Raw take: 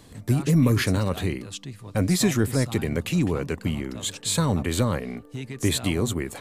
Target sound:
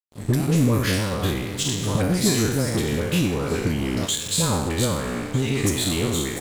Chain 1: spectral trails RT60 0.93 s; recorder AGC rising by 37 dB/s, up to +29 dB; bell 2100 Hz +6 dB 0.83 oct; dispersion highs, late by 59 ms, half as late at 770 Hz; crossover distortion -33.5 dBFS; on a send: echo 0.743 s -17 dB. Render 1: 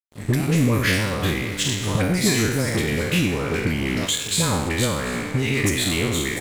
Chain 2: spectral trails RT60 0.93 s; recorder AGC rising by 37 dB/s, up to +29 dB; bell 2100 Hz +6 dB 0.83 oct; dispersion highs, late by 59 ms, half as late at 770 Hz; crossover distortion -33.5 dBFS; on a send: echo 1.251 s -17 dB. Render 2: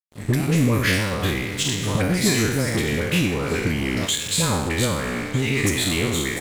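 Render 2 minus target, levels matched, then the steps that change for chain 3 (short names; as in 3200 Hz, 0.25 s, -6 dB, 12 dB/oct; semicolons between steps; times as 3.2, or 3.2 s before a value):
2000 Hz band +5.5 dB
change: bell 2100 Hz -2.5 dB 0.83 oct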